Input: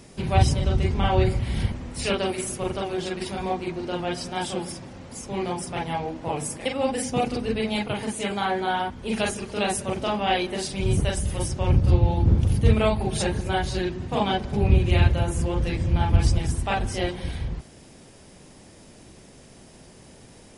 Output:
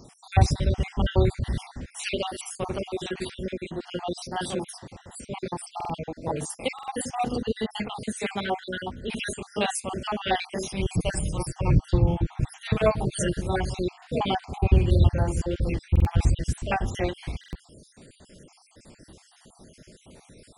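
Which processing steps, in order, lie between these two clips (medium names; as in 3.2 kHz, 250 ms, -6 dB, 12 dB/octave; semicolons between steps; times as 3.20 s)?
random holes in the spectrogram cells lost 53%; 10.94–13.41 s: comb 6.4 ms, depth 54%; buffer glitch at 5.76/6.74/15.91/17.39 s, samples 2048, times 2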